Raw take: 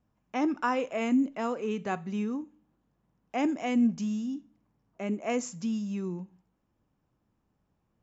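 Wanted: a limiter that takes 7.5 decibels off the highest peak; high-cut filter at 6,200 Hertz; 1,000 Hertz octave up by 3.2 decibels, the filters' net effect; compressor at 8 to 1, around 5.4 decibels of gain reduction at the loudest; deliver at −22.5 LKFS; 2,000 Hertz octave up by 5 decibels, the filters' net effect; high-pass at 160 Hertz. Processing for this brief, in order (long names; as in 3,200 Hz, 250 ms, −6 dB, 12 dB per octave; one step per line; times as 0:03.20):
high-pass filter 160 Hz
low-pass filter 6,200 Hz
parametric band 1,000 Hz +3 dB
parametric band 2,000 Hz +5.5 dB
downward compressor 8 to 1, threshold −26 dBFS
level +12 dB
brickwall limiter −12 dBFS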